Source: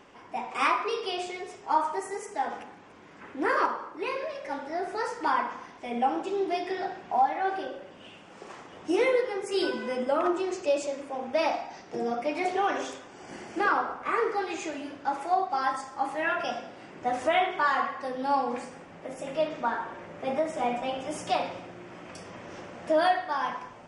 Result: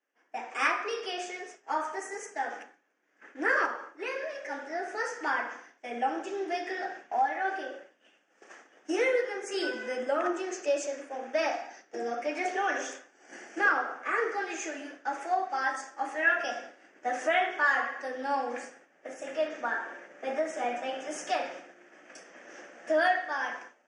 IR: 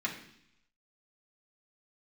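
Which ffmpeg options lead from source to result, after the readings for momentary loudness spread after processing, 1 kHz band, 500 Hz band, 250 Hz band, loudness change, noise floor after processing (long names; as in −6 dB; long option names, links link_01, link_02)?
16 LU, −4.0 dB, −3.0 dB, −5.0 dB, −2.0 dB, −67 dBFS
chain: -af "highpass=frequency=280:width=0.5412,highpass=frequency=280:width=1.3066,equalizer=frequency=390:width_type=q:width=4:gain=-4,equalizer=frequency=1000:width_type=q:width=4:gain=-9,equalizer=frequency=1700:width_type=q:width=4:gain=9,equalizer=frequency=4000:width_type=q:width=4:gain=-9,equalizer=frequency=6200:width_type=q:width=4:gain=8,lowpass=frequency=9200:width=0.5412,lowpass=frequency=9200:width=1.3066,agate=range=-33dB:threshold=-39dB:ratio=3:detection=peak,volume=-1.5dB"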